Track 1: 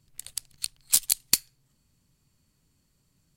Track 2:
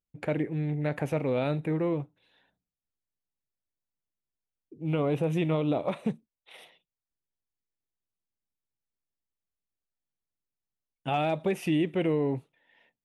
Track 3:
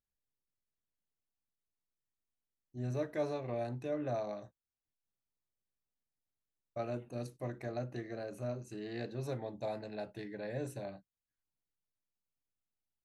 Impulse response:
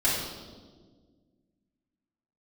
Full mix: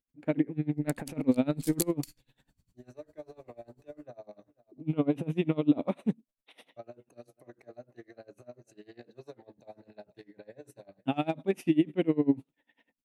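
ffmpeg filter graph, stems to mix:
-filter_complex "[0:a]lowshelf=frequency=220:gain=9,adelay=700,volume=-3.5dB[link_01];[1:a]equalizer=frequency=260:width_type=o:width=0.51:gain=15,volume=0dB[link_02];[2:a]acrossover=split=260|680[link_03][link_04][link_05];[link_03]acompressor=threshold=-55dB:ratio=4[link_06];[link_04]acompressor=threshold=-40dB:ratio=4[link_07];[link_05]acompressor=threshold=-52dB:ratio=4[link_08];[link_06][link_07][link_08]amix=inputs=3:normalize=0,volume=-0.5dB,asplit=2[link_09][link_10];[link_10]volume=-20.5dB,aecho=0:1:489|978|1467|1956:1|0.31|0.0961|0.0298[link_11];[link_01][link_02][link_09][link_11]amix=inputs=4:normalize=0,aeval=exprs='val(0)*pow(10,-25*(0.5-0.5*cos(2*PI*10*n/s))/20)':channel_layout=same"

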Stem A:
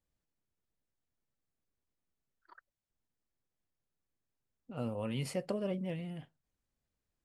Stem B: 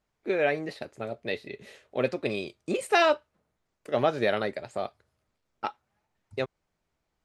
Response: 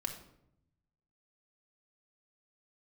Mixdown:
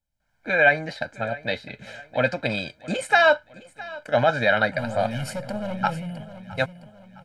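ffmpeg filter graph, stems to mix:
-filter_complex "[0:a]asoftclip=type=hard:threshold=-33.5dB,volume=-5.5dB,asplit=3[link_01][link_02][link_03];[link_02]volume=-8.5dB[link_04];[link_03]volume=-9.5dB[link_05];[1:a]lowpass=8200,equalizer=frequency=1600:width=3.4:gain=9.5,alimiter=limit=-14.5dB:level=0:latency=1:release=11,adelay=200,volume=-4.5dB,asplit=2[link_06][link_07];[link_07]volume=-20dB[link_08];[2:a]atrim=start_sample=2205[link_09];[link_04][link_09]afir=irnorm=-1:irlink=0[link_10];[link_05][link_08]amix=inputs=2:normalize=0,aecho=0:1:662|1324|1986|2648|3310|3972:1|0.42|0.176|0.0741|0.0311|0.0131[link_11];[link_01][link_06][link_10][link_11]amix=inputs=4:normalize=0,aecho=1:1:1.3:0.98,dynaudnorm=framelen=110:gausssize=5:maxgain=8.5dB"

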